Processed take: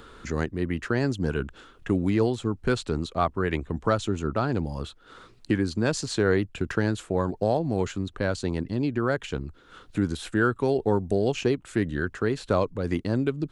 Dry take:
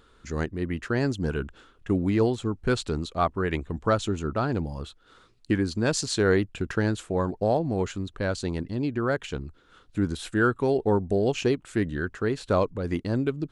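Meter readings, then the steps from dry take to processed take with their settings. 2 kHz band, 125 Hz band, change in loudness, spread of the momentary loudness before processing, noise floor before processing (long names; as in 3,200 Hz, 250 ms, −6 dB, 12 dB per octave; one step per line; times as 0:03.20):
0.0 dB, +0.5 dB, 0.0 dB, 8 LU, −59 dBFS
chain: multiband upward and downward compressor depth 40%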